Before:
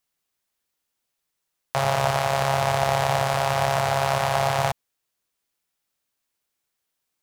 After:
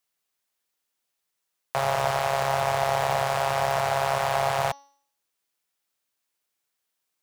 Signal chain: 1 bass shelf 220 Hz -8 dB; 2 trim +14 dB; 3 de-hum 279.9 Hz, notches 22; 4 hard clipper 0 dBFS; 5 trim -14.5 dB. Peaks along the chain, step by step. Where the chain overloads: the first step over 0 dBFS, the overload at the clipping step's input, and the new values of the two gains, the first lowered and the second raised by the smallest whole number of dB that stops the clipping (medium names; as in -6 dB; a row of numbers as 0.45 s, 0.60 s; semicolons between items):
-6.5 dBFS, +7.5 dBFS, +7.5 dBFS, 0.0 dBFS, -14.5 dBFS; step 2, 7.5 dB; step 2 +6 dB, step 5 -6.5 dB